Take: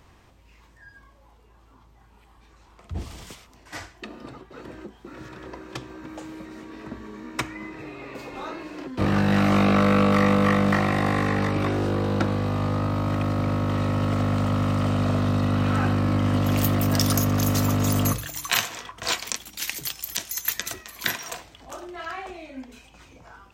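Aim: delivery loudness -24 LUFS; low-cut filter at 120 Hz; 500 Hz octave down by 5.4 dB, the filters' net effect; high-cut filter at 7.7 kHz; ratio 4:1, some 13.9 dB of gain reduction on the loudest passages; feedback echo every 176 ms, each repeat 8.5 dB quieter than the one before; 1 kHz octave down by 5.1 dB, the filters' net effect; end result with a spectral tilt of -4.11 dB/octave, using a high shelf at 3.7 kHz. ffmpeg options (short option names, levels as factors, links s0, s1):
-af "highpass=120,lowpass=7700,equalizer=f=500:t=o:g=-5,equalizer=f=1000:t=o:g=-6,highshelf=f=3700:g=5,acompressor=threshold=0.02:ratio=4,aecho=1:1:176|352|528|704:0.376|0.143|0.0543|0.0206,volume=3.98"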